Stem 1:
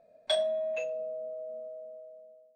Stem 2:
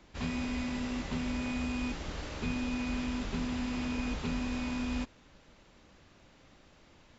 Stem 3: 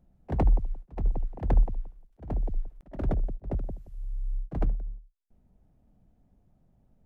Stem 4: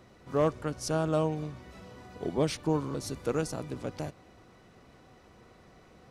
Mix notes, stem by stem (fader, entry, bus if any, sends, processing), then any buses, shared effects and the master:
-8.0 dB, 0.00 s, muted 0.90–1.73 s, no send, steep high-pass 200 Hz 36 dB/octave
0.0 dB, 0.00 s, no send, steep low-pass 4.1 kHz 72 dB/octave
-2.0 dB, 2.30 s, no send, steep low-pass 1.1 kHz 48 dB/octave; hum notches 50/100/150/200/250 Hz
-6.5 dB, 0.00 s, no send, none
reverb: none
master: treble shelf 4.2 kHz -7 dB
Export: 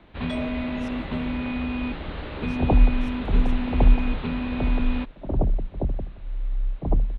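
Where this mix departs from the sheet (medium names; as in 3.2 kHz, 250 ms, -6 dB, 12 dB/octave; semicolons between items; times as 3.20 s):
stem 2 0.0 dB -> +6.5 dB; stem 3 -2.0 dB -> +6.0 dB; stem 4 -6.5 dB -> -15.0 dB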